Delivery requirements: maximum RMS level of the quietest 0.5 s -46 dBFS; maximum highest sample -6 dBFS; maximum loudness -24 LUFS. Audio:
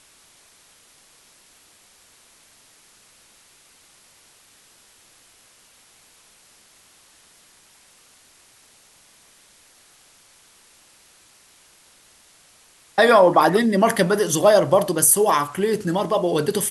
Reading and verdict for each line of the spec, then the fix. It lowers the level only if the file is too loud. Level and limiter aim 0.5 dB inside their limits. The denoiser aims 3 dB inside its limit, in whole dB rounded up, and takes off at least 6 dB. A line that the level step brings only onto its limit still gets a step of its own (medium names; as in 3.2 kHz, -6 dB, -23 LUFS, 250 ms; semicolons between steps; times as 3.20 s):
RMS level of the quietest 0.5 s -54 dBFS: pass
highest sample -4.5 dBFS: fail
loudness -17.5 LUFS: fail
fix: trim -7 dB